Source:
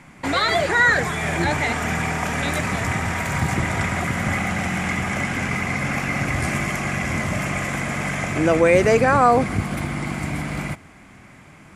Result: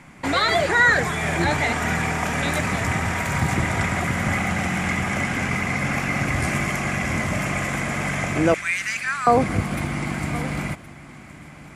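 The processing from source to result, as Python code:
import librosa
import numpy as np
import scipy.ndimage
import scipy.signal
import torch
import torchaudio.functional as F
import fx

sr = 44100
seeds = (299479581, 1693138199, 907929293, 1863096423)

p1 = fx.cheby2_highpass(x, sr, hz=590.0, order=4, stop_db=50, at=(8.54, 9.27))
y = p1 + fx.echo_single(p1, sr, ms=1067, db=-17.5, dry=0)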